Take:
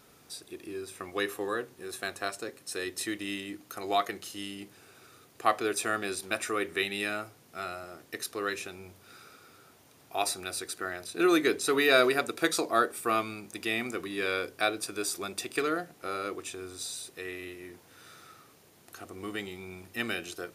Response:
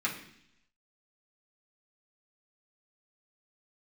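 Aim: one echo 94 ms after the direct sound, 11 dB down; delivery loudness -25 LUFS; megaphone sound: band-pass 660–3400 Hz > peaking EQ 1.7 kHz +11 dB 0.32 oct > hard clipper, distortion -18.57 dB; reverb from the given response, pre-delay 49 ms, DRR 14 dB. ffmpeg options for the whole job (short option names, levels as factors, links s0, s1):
-filter_complex "[0:a]aecho=1:1:94:0.282,asplit=2[s0][s1];[1:a]atrim=start_sample=2205,adelay=49[s2];[s1][s2]afir=irnorm=-1:irlink=0,volume=0.0891[s3];[s0][s3]amix=inputs=2:normalize=0,highpass=660,lowpass=3400,equalizer=f=1700:t=o:w=0.32:g=11,asoftclip=type=hard:threshold=0.158,volume=1.88"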